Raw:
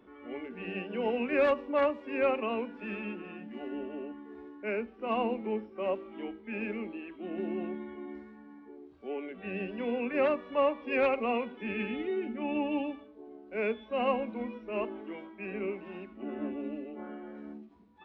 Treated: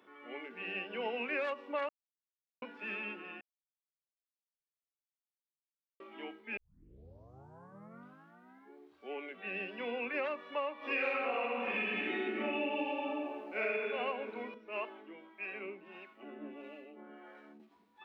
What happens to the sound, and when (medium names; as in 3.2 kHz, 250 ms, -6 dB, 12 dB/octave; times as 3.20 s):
1.89–2.62 s: mute
3.41–6.00 s: mute
6.57 s: tape start 2.19 s
10.77–13.84 s: reverb throw, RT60 1.5 s, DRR -9.5 dB
14.54–17.60 s: harmonic tremolo 1.6 Hz, crossover 430 Hz
whole clip: high-pass 1.2 kHz 6 dB/octave; compression 6:1, threshold -36 dBFS; trim +3.5 dB